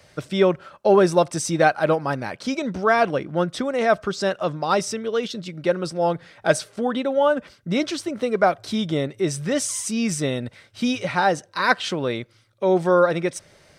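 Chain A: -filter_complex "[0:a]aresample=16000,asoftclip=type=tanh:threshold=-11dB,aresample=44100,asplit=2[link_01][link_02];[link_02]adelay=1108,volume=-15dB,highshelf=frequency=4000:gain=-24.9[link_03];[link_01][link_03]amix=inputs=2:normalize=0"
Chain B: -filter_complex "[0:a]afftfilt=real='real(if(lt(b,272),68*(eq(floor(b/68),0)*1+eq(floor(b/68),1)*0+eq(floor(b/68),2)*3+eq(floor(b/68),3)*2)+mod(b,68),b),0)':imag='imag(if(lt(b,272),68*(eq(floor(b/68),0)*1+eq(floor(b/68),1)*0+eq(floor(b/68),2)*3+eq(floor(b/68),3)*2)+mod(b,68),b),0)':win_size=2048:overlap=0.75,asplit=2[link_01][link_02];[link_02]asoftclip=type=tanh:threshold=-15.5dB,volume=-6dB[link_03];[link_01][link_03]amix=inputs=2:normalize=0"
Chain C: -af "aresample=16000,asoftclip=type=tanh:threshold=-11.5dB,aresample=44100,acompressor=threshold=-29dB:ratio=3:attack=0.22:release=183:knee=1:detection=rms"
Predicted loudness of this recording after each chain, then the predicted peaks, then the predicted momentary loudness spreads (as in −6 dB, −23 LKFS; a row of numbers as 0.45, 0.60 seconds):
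−23.5, −17.0, −33.0 LKFS; −10.5, −2.5, −23.0 dBFS; 7, 8, 5 LU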